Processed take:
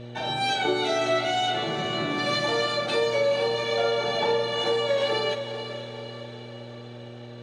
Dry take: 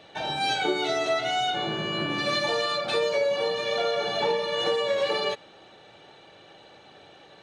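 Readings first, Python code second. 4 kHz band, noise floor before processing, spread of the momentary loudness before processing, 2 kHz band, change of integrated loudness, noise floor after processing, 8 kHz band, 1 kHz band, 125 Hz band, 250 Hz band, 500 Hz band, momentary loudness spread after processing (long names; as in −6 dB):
+0.5 dB, −52 dBFS, 3 LU, +1.0 dB, +1.0 dB, −41 dBFS, +1.0 dB, +1.0 dB, +5.0 dB, +2.5 dB, +1.5 dB, 16 LU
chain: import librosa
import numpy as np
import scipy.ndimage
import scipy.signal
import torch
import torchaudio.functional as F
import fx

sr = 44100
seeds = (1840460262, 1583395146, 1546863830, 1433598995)

y = fx.doubler(x, sr, ms=41.0, db=-12)
y = fx.dmg_buzz(y, sr, base_hz=120.0, harmonics=5, level_db=-40.0, tilt_db=-4, odd_only=False)
y = fx.echo_diffused(y, sr, ms=472, feedback_pct=55, wet_db=-10.0)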